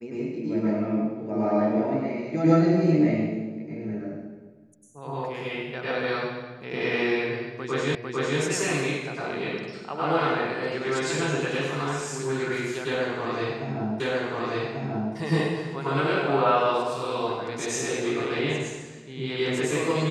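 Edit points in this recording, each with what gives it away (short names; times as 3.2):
7.95 repeat of the last 0.45 s
14 repeat of the last 1.14 s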